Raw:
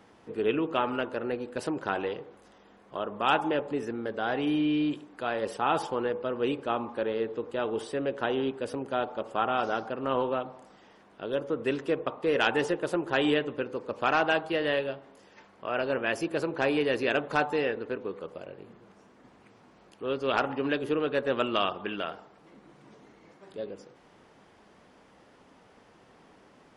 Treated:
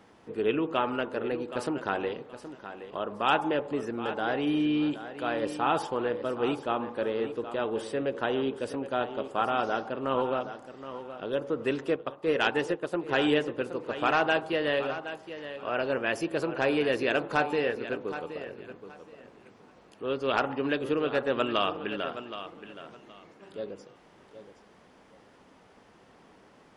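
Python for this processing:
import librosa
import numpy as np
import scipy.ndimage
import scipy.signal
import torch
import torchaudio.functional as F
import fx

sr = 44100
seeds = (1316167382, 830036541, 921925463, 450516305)

p1 = x + fx.echo_feedback(x, sr, ms=771, feedback_pct=22, wet_db=-12, dry=0)
y = fx.upward_expand(p1, sr, threshold_db=-41.0, expansion=1.5, at=(11.96, 13.09))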